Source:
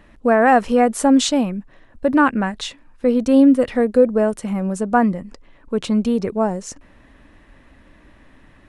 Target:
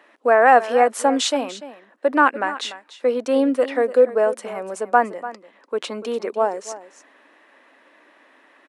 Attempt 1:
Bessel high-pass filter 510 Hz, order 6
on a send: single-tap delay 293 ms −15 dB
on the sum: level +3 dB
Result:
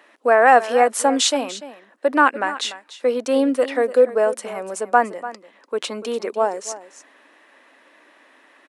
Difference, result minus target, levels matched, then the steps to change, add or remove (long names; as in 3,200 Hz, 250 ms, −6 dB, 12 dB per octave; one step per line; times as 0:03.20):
8,000 Hz band +5.0 dB
add after Bessel high-pass filter: high-shelf EQ 3,900 Hz −7 dB